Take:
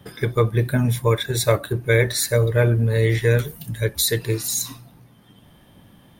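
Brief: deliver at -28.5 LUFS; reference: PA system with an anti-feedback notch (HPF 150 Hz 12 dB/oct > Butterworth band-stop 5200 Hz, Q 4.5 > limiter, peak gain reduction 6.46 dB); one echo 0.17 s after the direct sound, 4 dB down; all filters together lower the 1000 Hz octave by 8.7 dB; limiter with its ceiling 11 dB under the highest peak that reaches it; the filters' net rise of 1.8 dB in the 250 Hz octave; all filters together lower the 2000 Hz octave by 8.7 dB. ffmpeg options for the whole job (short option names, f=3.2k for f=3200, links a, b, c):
-af "equalizer=f=250:t=o:g=4,equalizer=f=1k:t=o:g=-8.5,equalizer=f=2k:t=o:g=-8,alimiter=limit=-16.5dB:level=0:latency=1,highpass=150,asuperstop=centerf=5200:order=8:qfactor=4.5,aecho=1:1:170:0.631,volume=1dB,alimiter=limit=-19.5dB:level=0:latency=1"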